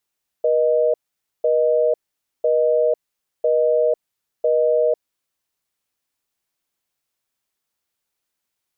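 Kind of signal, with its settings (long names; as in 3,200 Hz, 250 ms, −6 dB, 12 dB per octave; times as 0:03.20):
call progress tone busy tone, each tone −17 dBFS 4.97 s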